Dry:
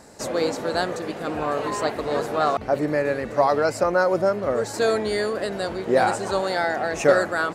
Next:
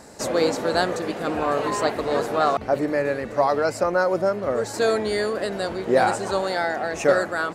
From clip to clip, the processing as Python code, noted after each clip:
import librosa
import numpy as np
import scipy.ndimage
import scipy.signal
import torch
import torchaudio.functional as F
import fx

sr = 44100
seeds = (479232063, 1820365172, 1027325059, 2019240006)

y = fx.hum_notches(x, sr, base_hz=50, count=3)
y = fx.rider(y, sr, range_db=3, speed_s=2.0)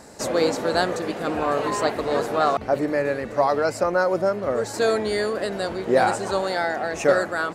y = x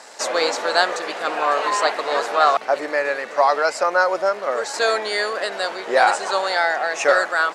y = fx.dmg_crackle(x, sr, seeds[0], per_s=470.0, level_db=-41.0)
y = fx.bandpass_edges(y, sr, low_hz=770.0, high_hz=7200.0)
y = F.gain(torch.from_numpy(y), 7.5).numpy()